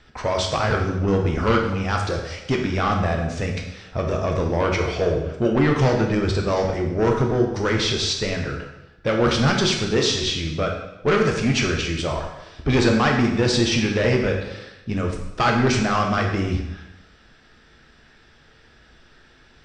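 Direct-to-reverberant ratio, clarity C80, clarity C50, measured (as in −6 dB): 1.0 dB, 7.0 dB, 4.5 dB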